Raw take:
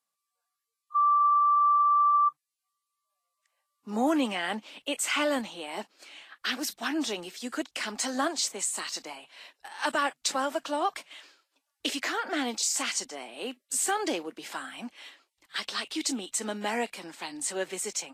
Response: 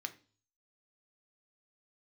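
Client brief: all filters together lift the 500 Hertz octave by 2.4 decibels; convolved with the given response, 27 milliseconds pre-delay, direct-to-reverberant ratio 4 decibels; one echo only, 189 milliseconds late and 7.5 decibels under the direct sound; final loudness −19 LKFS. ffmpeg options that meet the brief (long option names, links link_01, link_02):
-filter_complex "[0:a]equalizer=frequency=500:width_type=o:gain=3,aecho=1:1:189:0.422,asplit=2[link_01][link_02];[1:a]atrim=start_sample=2205,adelay=27[link_03];[link_02][link_03]afir=irnorm=-1:irlink=0,volume=-3dB[link_04];[link_01][link_04]amix=inputs=2:normalize=0,volume=10dB"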